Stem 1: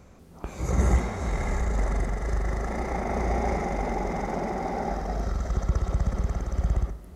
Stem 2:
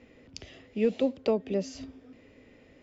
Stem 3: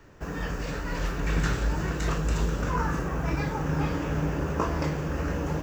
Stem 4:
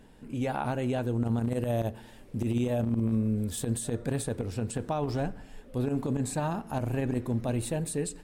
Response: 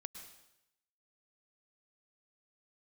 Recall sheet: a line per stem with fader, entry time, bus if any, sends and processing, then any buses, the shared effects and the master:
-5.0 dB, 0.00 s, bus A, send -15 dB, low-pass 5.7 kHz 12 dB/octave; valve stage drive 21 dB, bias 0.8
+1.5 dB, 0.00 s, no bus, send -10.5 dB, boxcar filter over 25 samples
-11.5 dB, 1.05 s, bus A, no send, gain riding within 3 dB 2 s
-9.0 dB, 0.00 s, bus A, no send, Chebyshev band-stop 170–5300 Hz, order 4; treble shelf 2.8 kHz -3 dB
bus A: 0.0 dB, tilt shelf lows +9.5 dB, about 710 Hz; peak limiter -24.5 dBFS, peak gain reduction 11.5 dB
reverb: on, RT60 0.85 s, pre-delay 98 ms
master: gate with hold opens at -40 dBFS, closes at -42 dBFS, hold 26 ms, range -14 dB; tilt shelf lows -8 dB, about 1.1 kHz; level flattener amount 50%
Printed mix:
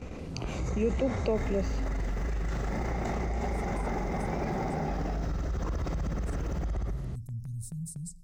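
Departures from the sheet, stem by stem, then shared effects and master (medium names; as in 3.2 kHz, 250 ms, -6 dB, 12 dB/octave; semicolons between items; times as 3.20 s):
stem 1: missing valve stage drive 21 dB, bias 0.8; stem 4 -9.0 dB -> -16.0 dB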